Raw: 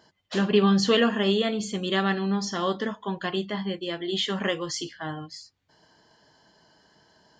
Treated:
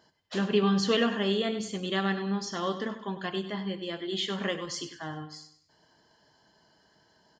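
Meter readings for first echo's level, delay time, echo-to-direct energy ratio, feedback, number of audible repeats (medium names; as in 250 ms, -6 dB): -12.0 dB, 98 ms, -11.5 dB, 40%, 3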